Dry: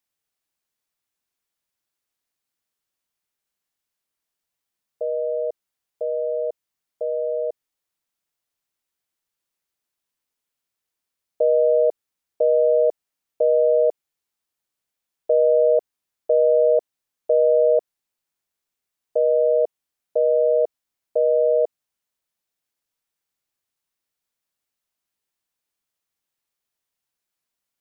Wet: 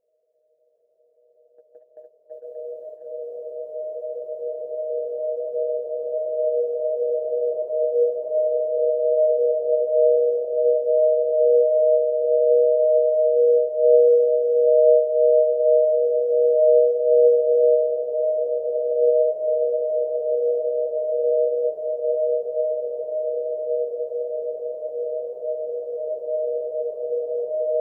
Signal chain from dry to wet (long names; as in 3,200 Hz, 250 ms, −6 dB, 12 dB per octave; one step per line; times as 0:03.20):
extreme stretch with random phases 21×, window 1.00 s, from 0:18.72
noise gate −39 dBFS, range −15 dB
low-shelf EQ 320 Hz +4.5 dB